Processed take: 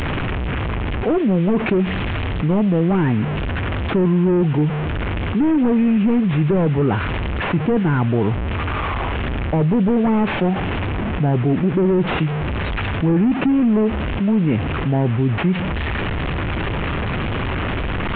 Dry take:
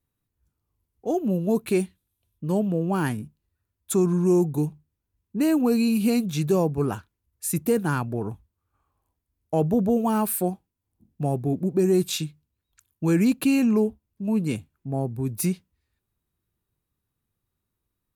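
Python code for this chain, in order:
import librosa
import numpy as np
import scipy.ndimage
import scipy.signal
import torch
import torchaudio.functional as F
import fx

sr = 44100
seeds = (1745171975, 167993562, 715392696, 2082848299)

y = fx.delta_mod(x, sr, bps=16000, step_db=-38.0)
y = fx.env_flatten(y, sr, amount_pct=70)
y = y * 10.0 ** (4.5 / 20.0)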